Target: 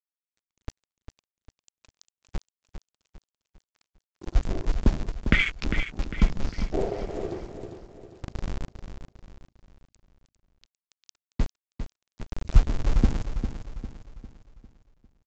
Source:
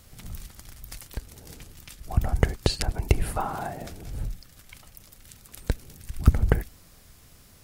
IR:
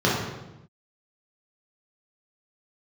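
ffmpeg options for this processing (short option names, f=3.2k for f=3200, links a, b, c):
-filter_complex "[0:a]afwtdn=0.0282,highshelf=f=2.2k:g=9.5,acrossover=split=110[a][b];[a]acrusher=bits=4:mix=0:aa=0.000001[c];[c][b]amix=inputs=2:normalize=0,asetrate=22050,aresample=44100,aresample=16000,aeval=exprs='sgn(val(0))*max(abs(val(0))-0.00794,0)':c=same,aresample=44100,aecho=1:1:401|802|1203|1604|2005:0.355|0.153|0.0656|0.0282|0.0121"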